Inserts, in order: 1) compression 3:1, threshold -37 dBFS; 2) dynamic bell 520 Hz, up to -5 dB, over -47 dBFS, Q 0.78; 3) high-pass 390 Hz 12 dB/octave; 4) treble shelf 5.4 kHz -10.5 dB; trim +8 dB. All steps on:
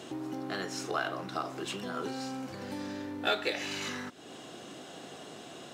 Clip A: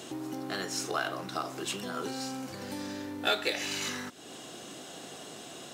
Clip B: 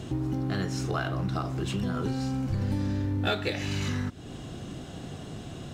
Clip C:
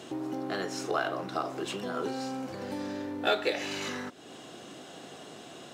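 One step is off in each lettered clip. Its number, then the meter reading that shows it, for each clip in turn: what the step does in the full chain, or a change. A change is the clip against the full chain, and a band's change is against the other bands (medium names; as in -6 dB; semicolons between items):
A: 4, 8 kHz band +6.5 dB; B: 3, 125 Hz band +19.5 dB; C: 2, momentary loudness spread change +2 LU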